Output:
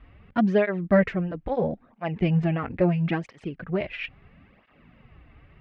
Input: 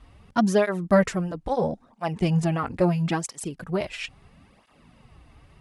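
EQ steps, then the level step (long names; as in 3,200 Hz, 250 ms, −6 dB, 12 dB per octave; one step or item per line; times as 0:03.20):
dynamic equaliser 1,300 Hz, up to −5 dB, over −42 dBFS, Q 2.2
transistor ladder low-pass 2,900 Hz, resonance 30%
parametric band 930 Hz −6 dB 0.63 octaves
+7.0 dB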